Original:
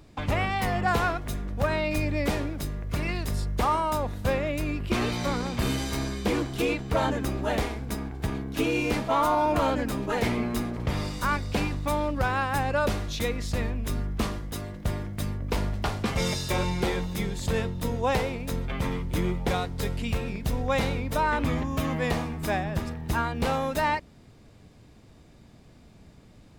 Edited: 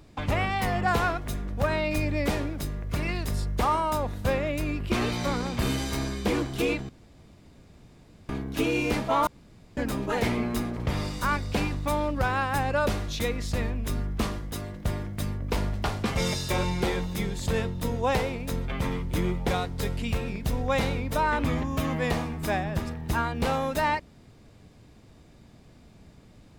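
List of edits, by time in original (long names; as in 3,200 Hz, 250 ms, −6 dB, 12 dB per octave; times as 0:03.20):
0:06.89–0:08.29: fill with room tone
0:09.27–0:09.77: fill with room tone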